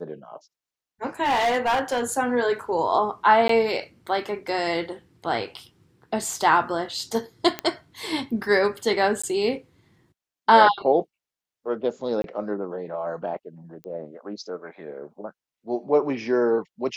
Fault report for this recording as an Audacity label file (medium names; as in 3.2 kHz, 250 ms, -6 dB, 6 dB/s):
1.230000	2.030000	clipped -18 dBFS
3.480000	3.490000	dropout 13 ms
7.590000	7.590000	pop -11 dBFS
9.220000	9.230000	dropout 15 ms
12.220000	12.240000	dropout 22 ms
13.840000	13.840000	pop -25 dBFS